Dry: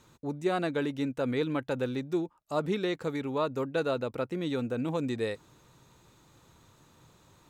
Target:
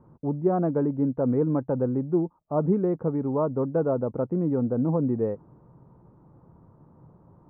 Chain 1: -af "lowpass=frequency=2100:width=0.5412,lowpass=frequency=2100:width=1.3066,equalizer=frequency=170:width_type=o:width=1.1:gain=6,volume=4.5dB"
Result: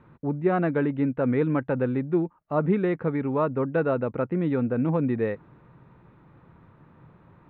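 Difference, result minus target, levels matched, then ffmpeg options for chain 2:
2,000 Hz band +15.5 dB
-af "lowpass=frequency=1000:width=0.5412,lowpass=frequency=1000:width=1.3066,equalizer=frequency=170:width_type=o:width=1.1:gain=6,volume=4.5dB"

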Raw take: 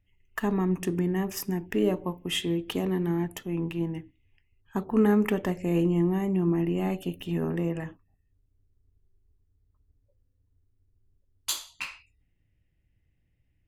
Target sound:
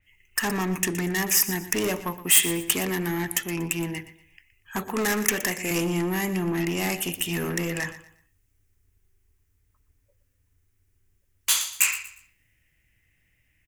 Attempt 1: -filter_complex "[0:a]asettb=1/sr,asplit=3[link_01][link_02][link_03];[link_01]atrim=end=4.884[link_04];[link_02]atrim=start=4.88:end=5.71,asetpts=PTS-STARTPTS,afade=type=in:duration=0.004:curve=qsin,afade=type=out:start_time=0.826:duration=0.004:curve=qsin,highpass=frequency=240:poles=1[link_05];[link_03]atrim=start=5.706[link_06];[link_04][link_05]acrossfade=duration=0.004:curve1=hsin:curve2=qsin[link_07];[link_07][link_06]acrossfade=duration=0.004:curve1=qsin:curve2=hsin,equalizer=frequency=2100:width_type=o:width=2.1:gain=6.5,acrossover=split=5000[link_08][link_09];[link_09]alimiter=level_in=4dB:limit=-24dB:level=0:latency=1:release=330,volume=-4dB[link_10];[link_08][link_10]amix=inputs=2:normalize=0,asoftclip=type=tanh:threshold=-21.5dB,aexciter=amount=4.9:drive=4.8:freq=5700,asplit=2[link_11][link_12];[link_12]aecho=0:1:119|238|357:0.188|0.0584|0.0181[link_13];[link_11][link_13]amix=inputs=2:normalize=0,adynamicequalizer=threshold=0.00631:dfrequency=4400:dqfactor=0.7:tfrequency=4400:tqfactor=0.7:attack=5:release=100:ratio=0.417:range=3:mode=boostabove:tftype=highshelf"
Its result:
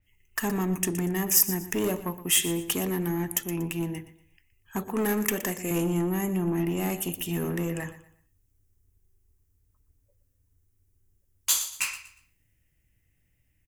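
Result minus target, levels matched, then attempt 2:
2,000 Hz band −5.0 dB
-filter_complex "[0:a]asettb=1/sr,asplit=3[link_01][link_02][link_03];[link_01]atrim=end=4.884[link_04];[link_02]atrim=start=4.88:end=5.71,asetpts=PTS-STARTPTS,afade=type=in:duration=0.004:curve=qsin,afade=type=out:start_time=0.826:duration=0.004:curve=qsin,highpass=frequency=240:poles=1[link_05];[link_03]atrim=start=5.706[link_06];[link_04][link_05]acrossfade=duration=0.004:curve1=hsin:curve2=qsin[link_07];[link_07][link_06]acrossfade=duration=0.004:curve1=qsin:curve2=hsin,equalizer=frequency=2100:width_type=o:width=2.1:gain=18,acrossover=split=5000[link_08][link_09];[link_09]alimiter=level_in=4dB:limit=-24dB:level=0:latency=1:release=330,volume=-4dB[link_10];[link_08][link_10]amix=inputs=2:normalize=0,asoftclip=type=tanh:threshold=-21.5dB,aexciter=amount=4.9:drive=4.8:freq=5700,asplit=2[link_11][link_12];[link_12]aecho=0:1:119|238|357:0.188|0.0584|0.0181[link_13];[link_11][link_13]amix=inputs=2:normalize=0,adynamicequalizer=threshold=0.00631:dfrequency=4400:dqfactor=0.7:tfrequency=4400:tqfactor=0.7:attack=5:release=100:ratio=0.417:range=3:mode=boostabove:tftype=highshelf"

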